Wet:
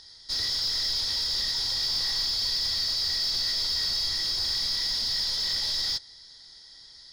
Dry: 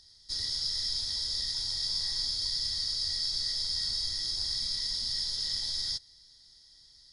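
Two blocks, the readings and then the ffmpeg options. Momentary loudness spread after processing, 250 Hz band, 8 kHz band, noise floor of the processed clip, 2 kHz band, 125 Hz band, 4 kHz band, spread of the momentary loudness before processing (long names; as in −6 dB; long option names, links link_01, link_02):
1 LU, can't be measured, +3.0 dB, −50 dBFS, +10.5 dB, +3.0 dB, +5.0 dB, 2 LU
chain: -filter_complex "[0:a]asplit=2[link_01][link_02];[link_02]highpass=frequency=720:poles=1,volume=14dB,asoftclip=type=tanh:threshold=-19dB[link_03];[link_01][link_03]amix=inputs=2:normalize=0,lowpass=frequency=1800:poles=1,volume=-6dB,volume=7.5dB"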